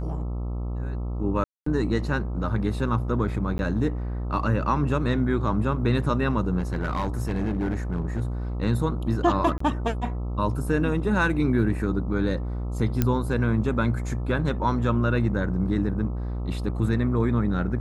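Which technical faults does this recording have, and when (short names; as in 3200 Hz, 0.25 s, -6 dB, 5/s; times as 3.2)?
buzz 60 Hz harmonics 22 -29 dBFS
1.44–1.66 gap 0.224 s
3.58–3.59 gap
6.58–8.22 clipped -21.5 dBFS
9.58–9.6 gap 24 ms
13.02 pop -8 dBFS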